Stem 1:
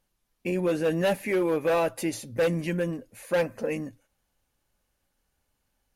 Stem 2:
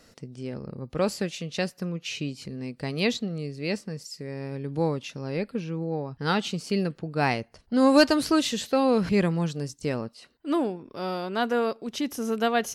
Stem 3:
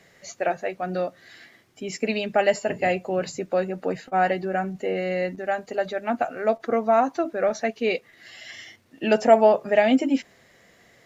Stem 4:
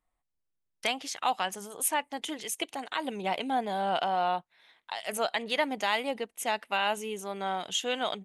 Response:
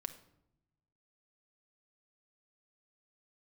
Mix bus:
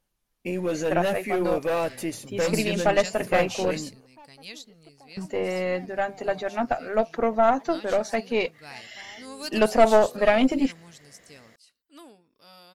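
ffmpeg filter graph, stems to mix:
-filter_complex "[0:a]volume=1.26,asplit=2[s0][s1];[1:a]crystalizer=i=9:c=0,bandreject=f=370:w=12,adelay=1450,volume=0.251[s2];[2:a]adelay=500,volume=1.33,asplit=3[s3][s4][s5];[s3]atrim=end=3.84,asetpts=PTS-STARTPTS,afade=t=out:st=3.836:d=0.004:c=hsin[s6];[s4]atrim=start=3.84:end=5.17,asetpts=PTS-STARTPTS,volume=0[s7];[s5]atrim=start=5.17,asetpts=PTS-STARTPTS,afade=t=in:d=0.004:c=hsin[s8];[s6][s7][s8]concat=n=3:v=0:a=1[s9];[3:a]lowpass=1100,asoftclip=type=tanh:threshold=0.0299,adelay=2250,volume=0.299[s10];[s1]apad=whole_len=625922[s11];[s2][s11]sidechaingate=range=0.355:threshold=0.00447:ratio=16:detection=peak[s12];[s0][s12][s9][s10]amix=inputs=4:normalize=0,aeval=exprs='(tanh(2.51*val(0)+0.65)-tanh(0.65))/2.51':c=same"

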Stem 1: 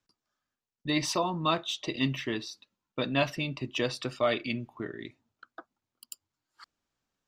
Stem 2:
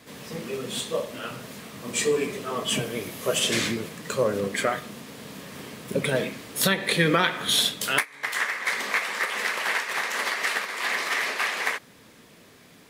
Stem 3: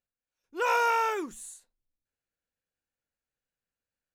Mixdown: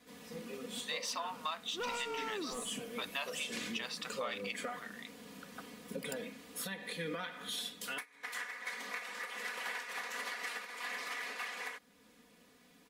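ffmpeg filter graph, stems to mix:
-filter_complex "[0:a]aeval=exprs='if(lt(val(0),0),0.708*val(0),val(0))':c=same,highpass=f=790:w=0.5412,highpass=f=790:w=1.3066,volume=0.891,asplit=2[s0][s1];[1:a]aecho=1:1:4.1:0.83,volume=0.2[s2];[2:a]asoftclip=type=tanh:threshold=0.0447,adelay=1200,volume=1.26[s3];[s1]apad=whole_len=235662[s4];[s3][s4]sidechaincompress=threshold=0.0224:ratio=8:attack=16:release=1490[s5];[s2][s5]amix=inputs=2:normalize=0,alimiter=level_in=1.68:limit=0.0631:level=0:latency=1:release=422,volume=0.596,volume=1[s6];[s0][s6]amix=inputs=2:normalize=0,acompressor=threshold=0.0178:ratio=6"

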